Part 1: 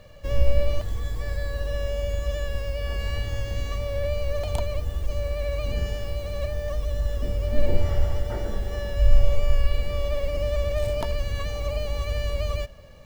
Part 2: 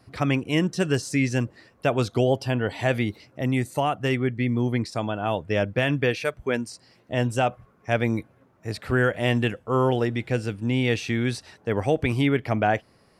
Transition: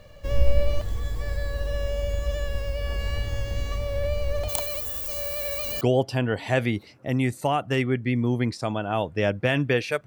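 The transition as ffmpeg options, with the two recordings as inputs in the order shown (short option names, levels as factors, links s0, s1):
-filter_complex "[0:a]asplit=3[s0][s1][s2];[s0]afade=t=out:st=4.48:d=0.02[s3];[s1]aemphasis=mode=production:type=riaa,afade=t=in:st=4.48:d=0.02,afade=t=out:st=5.81:d=0.02[s4];[s2]afade=t=in:st=5.81:d=0.02[s5];[s3][s4][s5]amix=inputs=3:normalize=0,apad=whole_dur=10.06,atrim=end=10.06,atrim=end=5.812[s6];[1:a]atrim=start=2.138:end=6.39[s7];[s6][s7]acrossfade=d=0.004:c1=hsin:c2=hsin"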